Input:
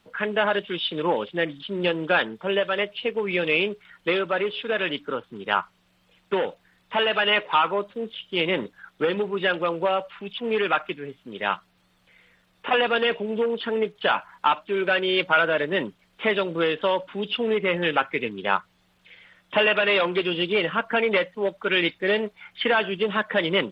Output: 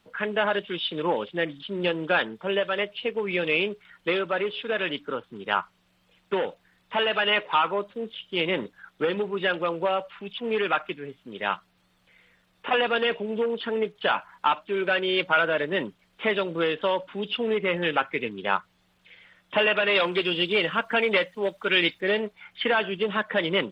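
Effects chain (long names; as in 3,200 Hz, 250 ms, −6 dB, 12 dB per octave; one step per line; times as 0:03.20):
0:19.95–0:22.01: high-shelf EQ 3,700 Hz +9.5 dB
level −2 dB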